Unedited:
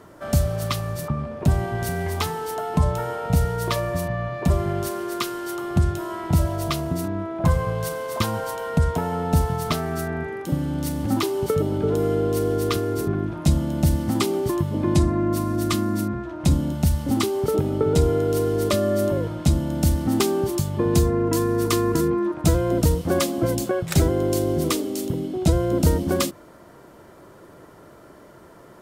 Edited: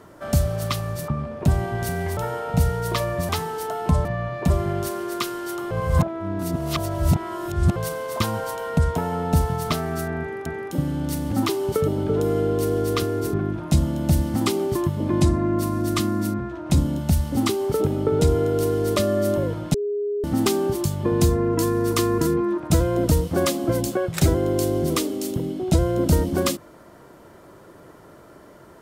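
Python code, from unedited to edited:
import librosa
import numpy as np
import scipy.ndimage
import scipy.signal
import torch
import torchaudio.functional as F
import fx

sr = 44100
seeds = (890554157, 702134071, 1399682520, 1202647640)

y = fx.edit(x, sr, fx.move(start_s=2.17, length_s=0.76, to_s=4.05),
    fx.reverse_span(start_s=5.71, length_s=2.05),
    fx.repeat(start_s=10.2, length_s=0.26, count=2),
    fx.bleep(start_s=19.48, length_s=0.5, hz=411.0, db=-22.0), tone=tone)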